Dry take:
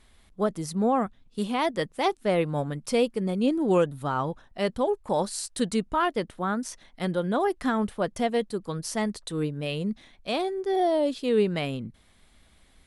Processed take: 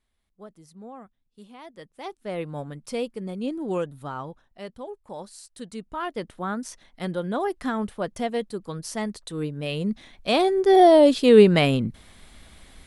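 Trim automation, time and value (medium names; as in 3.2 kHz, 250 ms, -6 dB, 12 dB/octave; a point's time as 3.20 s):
1.63 s -18.5 dB
2.45 s -5.5 dB
4.08 s -5.5 dB
4.71 s -12 dB
5.66 s -12 dB
6.30 s -1.5 dB
9.37 s -1.5 dB
10.69 s +10 dB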